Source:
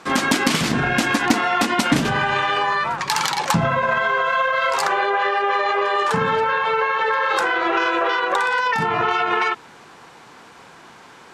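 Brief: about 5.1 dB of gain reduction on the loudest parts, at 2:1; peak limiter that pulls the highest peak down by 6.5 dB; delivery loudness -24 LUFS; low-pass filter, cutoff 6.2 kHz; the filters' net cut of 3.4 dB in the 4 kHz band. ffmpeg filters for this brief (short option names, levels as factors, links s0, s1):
-af "lowpass=6200,equalizer=f=4000:t=o:g=-4,acompressor=threshold=0.0708:ratio=2,volume=1.19,alimiter=limit=0.168:level=0:latency=1"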